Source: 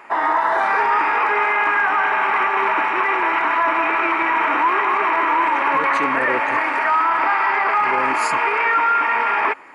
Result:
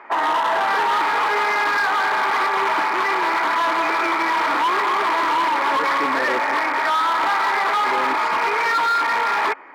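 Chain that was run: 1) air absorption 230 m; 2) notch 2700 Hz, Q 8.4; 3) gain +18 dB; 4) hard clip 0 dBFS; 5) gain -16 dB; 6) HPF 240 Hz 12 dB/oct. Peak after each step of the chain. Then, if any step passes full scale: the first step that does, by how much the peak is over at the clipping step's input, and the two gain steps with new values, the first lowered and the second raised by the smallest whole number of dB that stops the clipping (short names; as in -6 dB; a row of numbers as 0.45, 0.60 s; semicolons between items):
-8.5, -8.5, +9.5, 0.0, -16.0, -11.5 dBFS; step 3, 9.5 dB; step 3 +8 dB, step 5 -6 dB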